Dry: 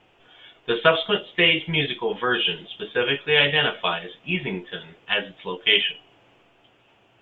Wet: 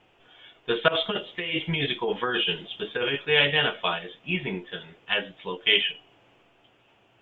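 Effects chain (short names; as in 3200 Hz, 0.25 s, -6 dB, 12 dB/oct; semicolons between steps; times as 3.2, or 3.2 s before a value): 0.88–3.25 negative-ratio compressor -24 dBFS, ratio -1; gain -2.5 dB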